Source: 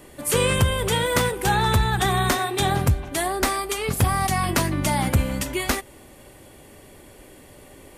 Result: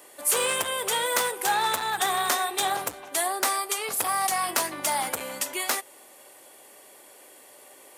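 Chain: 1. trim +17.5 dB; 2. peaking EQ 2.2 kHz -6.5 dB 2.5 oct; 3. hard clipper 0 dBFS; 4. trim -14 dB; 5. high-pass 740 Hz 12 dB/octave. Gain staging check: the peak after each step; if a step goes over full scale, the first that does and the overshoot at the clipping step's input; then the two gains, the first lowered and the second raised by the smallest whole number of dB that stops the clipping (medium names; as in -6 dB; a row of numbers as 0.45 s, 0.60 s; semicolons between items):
+6.5 dBFS, +7.0 dBFS, 0.0 dBFS, -14.0 dBFS, -8.5 dBFS; step 1, 7.0 dB; step 1 +10.5 dB, step 4 -7 dB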